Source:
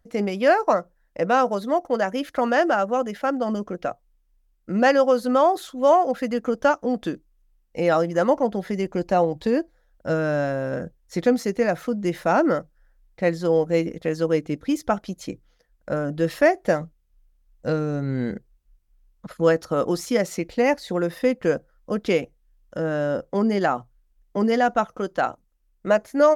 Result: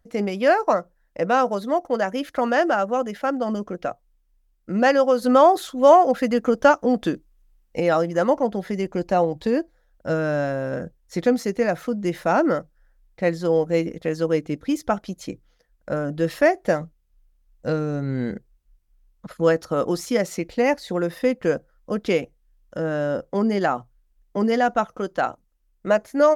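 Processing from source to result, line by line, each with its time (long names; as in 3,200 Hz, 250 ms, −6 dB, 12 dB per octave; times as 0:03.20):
0:05.22–0:07.80: clip gain +4 dB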